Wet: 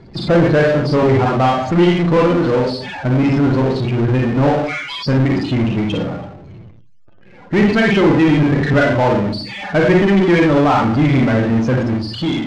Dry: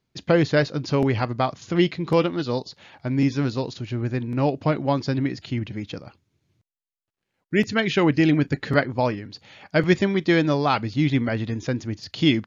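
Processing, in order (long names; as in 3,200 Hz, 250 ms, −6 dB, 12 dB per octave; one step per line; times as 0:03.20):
fade-out on the ending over 0.78 s
0:04.49–0:05.06: inverse Chebyshev high-pass filter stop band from 420 Hz, stop band 70 dB
four-comb reverb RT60 0.5 s, combs from 31 ms, DRR −1 dB
spectral peaks only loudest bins 32
power curve on the samples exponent 0.5
high-frequency loss of the air 110 metres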